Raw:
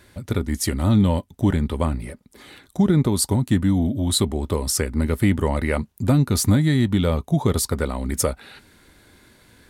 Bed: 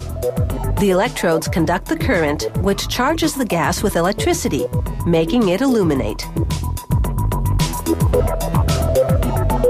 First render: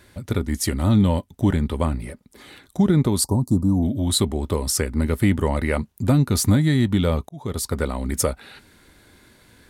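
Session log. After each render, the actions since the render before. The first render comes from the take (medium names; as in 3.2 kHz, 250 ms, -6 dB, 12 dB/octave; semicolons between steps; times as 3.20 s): 3.24–3.83 s: elliptic band-stop 1.1–4.7 kHz; 7.29–7.80 s: fade in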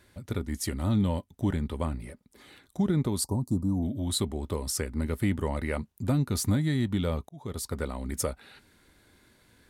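trim -8.5 dB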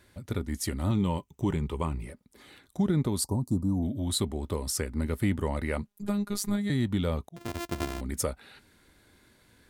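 0.90–2.06 s: rippled EQ curve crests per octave 0.73, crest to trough 8 dB; 5.87–6.70 s: robot voice 204 Hz; 7.36–8.01 s: sorted samples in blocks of 128 samples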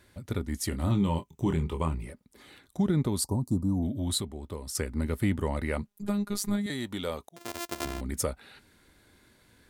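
0.69–1.95 s: doubling 25 ms -8 dB; 4.21–4.75 s: gain -6.5 dB; 6.66–7.85 s: tone controls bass -14 dB, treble +5 dB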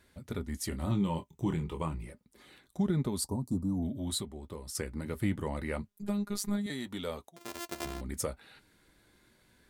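flange 0.29 Hz, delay 4.3 ms, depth 2.1 ms, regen -61%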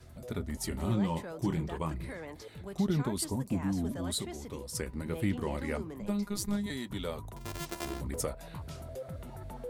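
add bed -26.5 dB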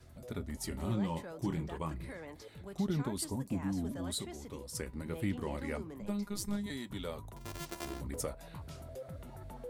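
feedback comb 280 Hz, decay 0.19 s, mix 40%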